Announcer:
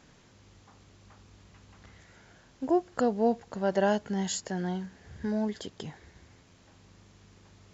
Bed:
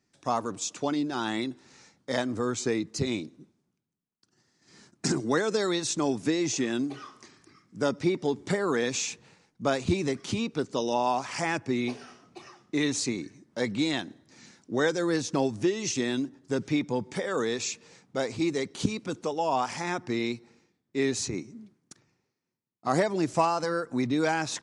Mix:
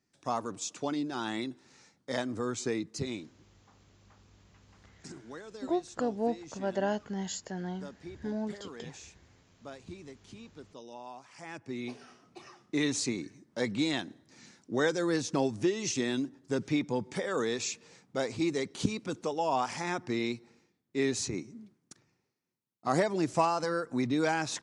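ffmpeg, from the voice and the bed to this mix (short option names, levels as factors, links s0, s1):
-filter_complex "[0:a]adelay=3000,volume=0.562[s0];[1:a]volume=4.22,afade=t=out:st=2.84:d=0.83:silence=0.177828,afade=t=in:st=11.37:d=1.16:silence=0.141254[s1];[s0][s1]amix=inputs=2:normalize=0"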